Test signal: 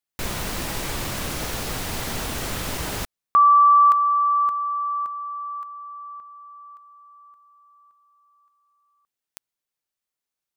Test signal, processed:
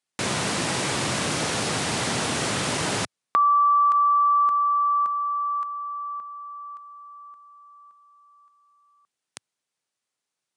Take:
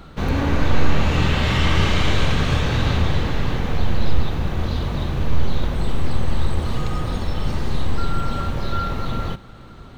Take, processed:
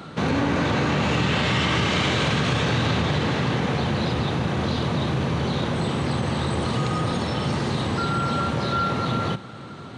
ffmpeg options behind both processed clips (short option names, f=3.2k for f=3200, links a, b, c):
-af "highpass=f=110:w=0.5412,highpass=f=110:w=1.3066,acompressor=threshold=-22dB:ratio=10:attack=2:release=105:knee=6:detection=peak,aresample=22050,aresample=44100,volume=5.5dB"